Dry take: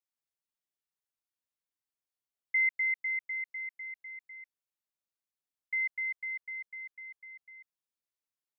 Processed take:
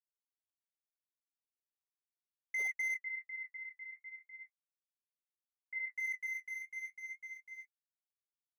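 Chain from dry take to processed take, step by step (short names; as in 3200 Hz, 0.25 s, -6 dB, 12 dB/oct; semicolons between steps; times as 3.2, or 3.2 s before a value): G.711 law mismatch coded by mu; 2.94–5.92 LPF 1900 Hz 24 dB/oct; flange 0.38 Hz, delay 4.1 ms, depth 9.3 ms, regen +41%; doubler 25 ms -6 dB; slew limiter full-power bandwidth 52 Hz; gain -1.5 dB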